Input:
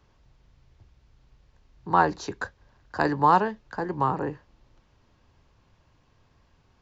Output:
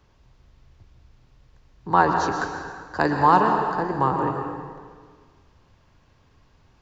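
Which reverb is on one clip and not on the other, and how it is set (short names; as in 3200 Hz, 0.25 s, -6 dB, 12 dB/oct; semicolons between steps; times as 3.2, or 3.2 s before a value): plate-style reverb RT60 1.7 s, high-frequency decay 0.85×, pre-delay 0.105 s, DRR 3.5 dB; gain +2.5 dB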